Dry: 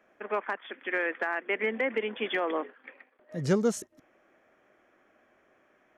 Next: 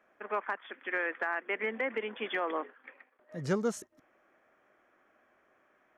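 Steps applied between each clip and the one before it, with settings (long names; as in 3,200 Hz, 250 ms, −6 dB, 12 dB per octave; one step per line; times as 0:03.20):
parametric band 1,200 Hz +5.5 dB 1.5 octaves
level −6 dB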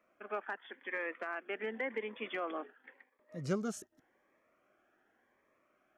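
phaser whose notches keep moving one way rising 0.89 Hz
level −3 dB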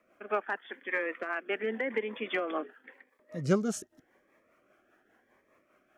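rotating-speaker cabinet horn 5 Hz
level +8.5 dB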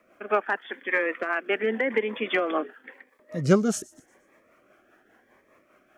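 delay with a high-pass on its return 119 ms, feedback 41%, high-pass 4,900 Hz, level −20 dB
level +7 dB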